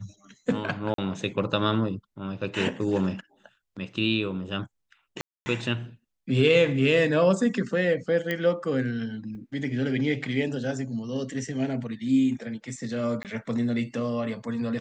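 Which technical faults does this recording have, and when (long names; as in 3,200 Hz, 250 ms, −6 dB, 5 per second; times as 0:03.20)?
0:00.94–0:00.98: drop-out 43 ms
0:05.21–0:05.46: drop-out 250 ms
0:08.31: click −15 dBFS
0:09.35: drop-out 2.6 ms
0:13.23–0:13.25: drop-out 18 ms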